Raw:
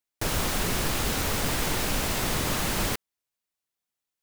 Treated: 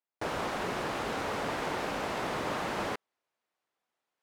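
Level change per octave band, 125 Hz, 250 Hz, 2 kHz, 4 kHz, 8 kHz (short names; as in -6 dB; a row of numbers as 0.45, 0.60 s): -12.0, -6.0, -5.0, -10.5, -17.5 dB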